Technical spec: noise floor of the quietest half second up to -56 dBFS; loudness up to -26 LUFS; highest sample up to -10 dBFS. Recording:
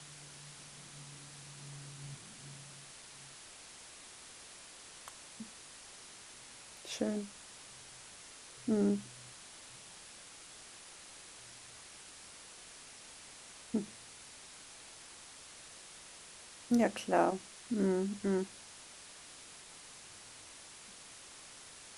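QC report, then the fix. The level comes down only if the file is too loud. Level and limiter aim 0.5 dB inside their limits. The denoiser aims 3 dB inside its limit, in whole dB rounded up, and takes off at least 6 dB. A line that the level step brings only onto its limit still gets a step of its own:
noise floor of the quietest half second -53 dBFS: fail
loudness -41.5 LUFS: pass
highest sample -15.5 dBFS: pass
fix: noise reduction 6 dB, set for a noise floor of -53 dBFS

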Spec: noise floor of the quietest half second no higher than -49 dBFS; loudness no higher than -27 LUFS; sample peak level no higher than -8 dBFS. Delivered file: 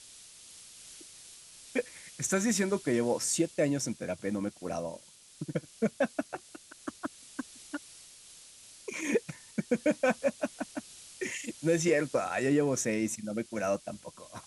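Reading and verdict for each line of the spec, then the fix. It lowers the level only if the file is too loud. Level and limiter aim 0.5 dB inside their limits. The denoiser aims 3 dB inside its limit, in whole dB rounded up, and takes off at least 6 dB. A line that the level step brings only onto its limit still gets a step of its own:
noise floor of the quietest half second -53 dBFS: pass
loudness -32.0 LUFS: pass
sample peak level -15.0 dBFS: pass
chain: none needed

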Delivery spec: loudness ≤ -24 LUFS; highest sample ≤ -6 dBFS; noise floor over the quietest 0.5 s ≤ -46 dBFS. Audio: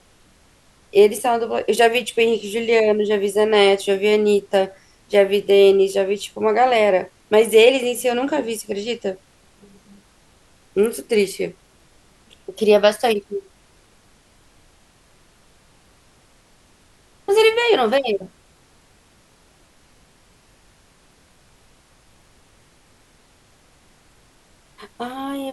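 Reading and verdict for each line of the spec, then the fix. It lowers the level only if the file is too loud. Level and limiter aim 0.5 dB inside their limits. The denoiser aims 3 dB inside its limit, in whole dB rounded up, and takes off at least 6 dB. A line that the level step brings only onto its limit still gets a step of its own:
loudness -18.0 LUFS: fail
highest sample -2.0 dBFS: fail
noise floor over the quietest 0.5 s -55 dBFS: pass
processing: trim -6.5 dB

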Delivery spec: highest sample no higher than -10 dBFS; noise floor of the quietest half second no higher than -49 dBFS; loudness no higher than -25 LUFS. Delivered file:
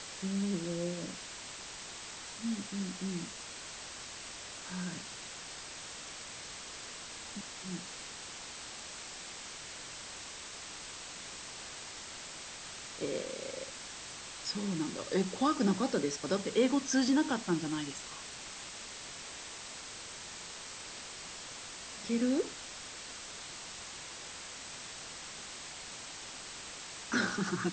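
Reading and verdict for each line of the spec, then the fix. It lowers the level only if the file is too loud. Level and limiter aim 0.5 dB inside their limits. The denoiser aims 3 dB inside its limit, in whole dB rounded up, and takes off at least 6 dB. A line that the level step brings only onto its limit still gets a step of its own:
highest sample -17.0 dBFS: pass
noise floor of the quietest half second -46 dBFS: fail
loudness -38.0 LUFS: pass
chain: noise reduction 6 dB, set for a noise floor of -46 dBFS

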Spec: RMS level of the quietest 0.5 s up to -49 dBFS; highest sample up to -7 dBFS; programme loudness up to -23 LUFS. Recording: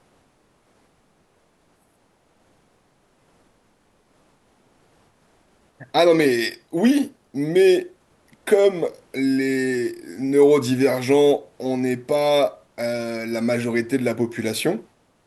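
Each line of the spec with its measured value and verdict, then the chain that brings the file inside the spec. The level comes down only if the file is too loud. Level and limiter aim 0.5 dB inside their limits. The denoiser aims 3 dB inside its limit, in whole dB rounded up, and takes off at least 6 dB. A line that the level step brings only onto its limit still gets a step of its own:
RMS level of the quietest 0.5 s -62 dBFS: pass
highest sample -5.0 dBFS: fail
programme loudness -20.5 LUFS: fail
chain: trim -3 dB

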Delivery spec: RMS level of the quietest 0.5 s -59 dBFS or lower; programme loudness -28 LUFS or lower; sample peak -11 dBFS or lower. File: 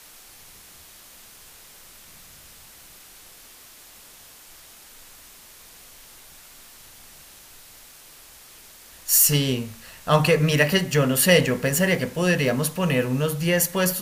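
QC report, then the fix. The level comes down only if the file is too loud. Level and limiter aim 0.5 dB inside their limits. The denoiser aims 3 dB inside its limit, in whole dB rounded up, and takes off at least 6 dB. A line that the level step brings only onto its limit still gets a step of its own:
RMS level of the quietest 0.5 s -48 dBFS: fail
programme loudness -20.0 LUFS: fail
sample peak -5.0 dBFS: fail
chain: noise reduction 6 dB, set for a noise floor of -48 dBFS; trim -8.5 dB

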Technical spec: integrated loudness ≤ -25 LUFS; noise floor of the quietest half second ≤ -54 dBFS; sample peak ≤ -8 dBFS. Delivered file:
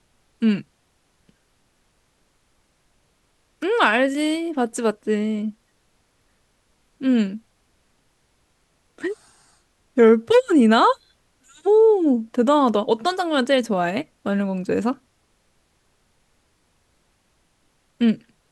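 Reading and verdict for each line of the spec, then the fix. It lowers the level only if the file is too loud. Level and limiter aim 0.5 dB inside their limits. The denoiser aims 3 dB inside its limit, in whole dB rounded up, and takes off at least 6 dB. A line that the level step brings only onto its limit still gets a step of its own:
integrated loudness -20.0 LUFS: fail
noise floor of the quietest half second -65 dBFS: pass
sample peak -4.0 dBFS: fail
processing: trim -5.5 dB

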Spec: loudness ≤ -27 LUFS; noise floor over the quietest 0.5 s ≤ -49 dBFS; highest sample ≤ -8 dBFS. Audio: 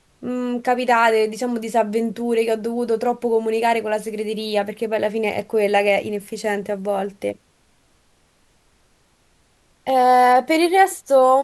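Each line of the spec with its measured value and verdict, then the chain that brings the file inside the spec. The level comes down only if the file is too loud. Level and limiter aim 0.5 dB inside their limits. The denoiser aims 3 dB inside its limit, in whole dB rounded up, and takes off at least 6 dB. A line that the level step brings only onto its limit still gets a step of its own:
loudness -19.5 LUFS: fail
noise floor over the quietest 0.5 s -60 dBFS: pass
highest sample -4.0 dBFS: fail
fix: trim -8 dB

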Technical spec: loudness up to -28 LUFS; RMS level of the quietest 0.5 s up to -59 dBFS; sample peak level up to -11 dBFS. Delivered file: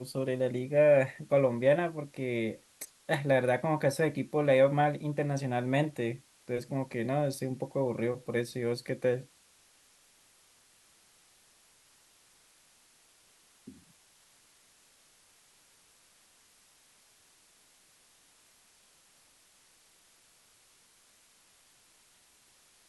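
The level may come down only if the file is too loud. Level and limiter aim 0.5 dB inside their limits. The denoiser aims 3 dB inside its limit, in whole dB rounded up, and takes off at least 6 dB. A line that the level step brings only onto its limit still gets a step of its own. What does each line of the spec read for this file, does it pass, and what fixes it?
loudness -30.0 LUFS: pass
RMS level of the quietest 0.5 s -64 dBFS: pass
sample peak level -13.5 dBFS: pass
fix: none needed

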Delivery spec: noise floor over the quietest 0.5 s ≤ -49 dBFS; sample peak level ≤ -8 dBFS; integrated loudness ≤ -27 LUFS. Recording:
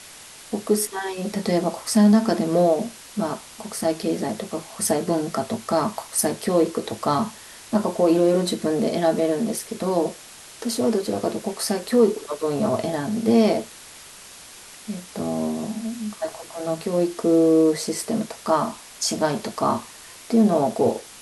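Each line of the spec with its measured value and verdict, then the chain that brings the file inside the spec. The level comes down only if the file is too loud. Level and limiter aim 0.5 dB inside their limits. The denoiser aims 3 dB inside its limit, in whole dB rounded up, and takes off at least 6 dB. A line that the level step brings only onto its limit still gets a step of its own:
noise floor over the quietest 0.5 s -43 dBFS: fail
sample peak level -6.5 dBFS: fail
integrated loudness -23.0 LUFS: fail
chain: noise reduction 6 dB, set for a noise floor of -43 dBFS; trim -4.5 dB

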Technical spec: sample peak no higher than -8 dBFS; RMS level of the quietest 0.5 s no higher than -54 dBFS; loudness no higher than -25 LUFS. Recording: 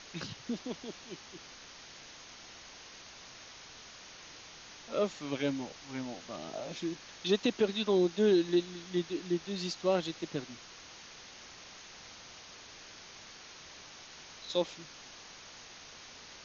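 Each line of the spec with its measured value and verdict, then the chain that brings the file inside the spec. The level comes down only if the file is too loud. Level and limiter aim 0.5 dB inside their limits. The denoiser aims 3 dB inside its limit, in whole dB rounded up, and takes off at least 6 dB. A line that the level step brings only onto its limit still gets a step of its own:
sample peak -16.0 dBFS: pass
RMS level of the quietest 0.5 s -51 dBFS: fail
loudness -33.5 LUFS: pass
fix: noise reduction 6 dB, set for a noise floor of -51 dBFS

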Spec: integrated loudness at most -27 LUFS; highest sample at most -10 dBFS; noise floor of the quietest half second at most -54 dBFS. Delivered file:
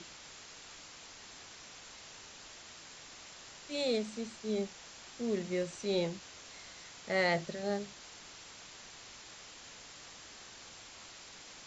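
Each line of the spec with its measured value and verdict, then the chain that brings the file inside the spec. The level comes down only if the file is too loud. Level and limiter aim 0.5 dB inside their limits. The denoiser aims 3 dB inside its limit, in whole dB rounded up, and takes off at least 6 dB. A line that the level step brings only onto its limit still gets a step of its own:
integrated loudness -40.0 LUFS: pass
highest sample -17.5 dBFS: pass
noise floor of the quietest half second -52 dBFS: fail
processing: noise reduction 6 dB, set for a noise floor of -52 dBFS

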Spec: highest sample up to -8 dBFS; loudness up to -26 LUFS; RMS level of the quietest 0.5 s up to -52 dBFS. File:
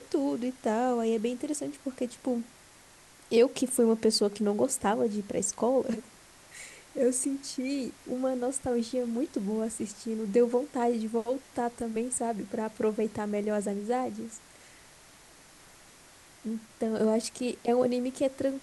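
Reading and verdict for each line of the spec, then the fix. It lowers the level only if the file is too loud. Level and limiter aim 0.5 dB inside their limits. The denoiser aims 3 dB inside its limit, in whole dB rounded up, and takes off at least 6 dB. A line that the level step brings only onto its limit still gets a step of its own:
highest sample -12.5 dBFS: pass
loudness -30.0 LUFS: pass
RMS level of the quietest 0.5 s -55 dBFS: pass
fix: none needed

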